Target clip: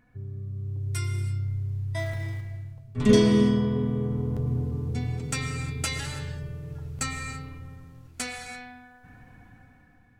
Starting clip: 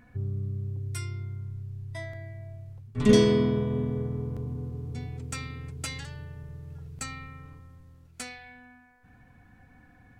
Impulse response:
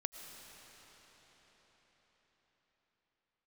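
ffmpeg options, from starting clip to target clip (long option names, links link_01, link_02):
-filter_complex "[0:a]asettb=1/sr,asplit=3[link_01][link_02][link_03];[link_01]atrim=end=1.974[link_04];[link_02]atrim=start=1.97:end=2.41,asetpts=PTS-STARTPTS,afade=type=in:duration=0.004:curve=qsin,afade=type=out:start_time=0.436:duration=0.004:curve=qsin,aeval=exprs='val(0)+0.5*0.00447*sgn(val(0))':channel_layout=same[link_05];[link_03]atrim=start=2.406[link_06];[link_04][link_05]acrossfade=duration=0.004:curve1=hsin:curve2=qsin[link_07];[link_07][link_06]acrossfade=duration=0.004:curve1=qsin:curve2=hsin,dynaudnorm=framelen=190:gausssize=9:maxgain=12.5dB,flanger=delay=6.4:depth=3:regen=-71:speed=0.75:shape=sinusoidal[link_08];[1:a]atrim=start_sample=2205,afade=type=out:start_time=0.39:duration=0.01,atrim=end_sample=17640[link_09];[link_08][link_09]afir=irnorm=-1:irlink=0"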